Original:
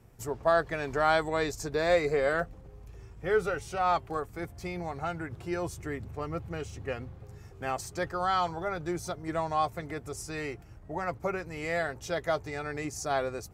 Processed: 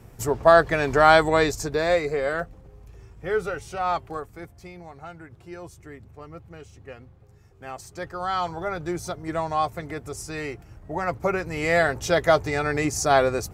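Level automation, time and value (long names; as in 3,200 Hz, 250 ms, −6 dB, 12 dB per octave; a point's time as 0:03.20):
0:01.34 +10 dB
0:02.08 +1.5 dB
0:04.08 +1.5 dB
0:04.77 −6.5 dB
0:07.47 −6.5 dB
0:08.65 +4 dB
0:10.64 +4 dB
0:11.89 +11 dB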